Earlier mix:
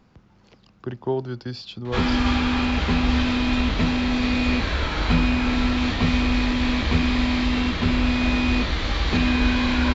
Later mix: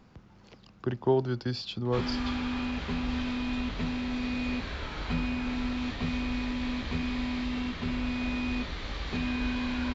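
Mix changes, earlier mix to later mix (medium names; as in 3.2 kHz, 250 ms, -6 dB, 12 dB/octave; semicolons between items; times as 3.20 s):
background -10.0 dB; reverb: off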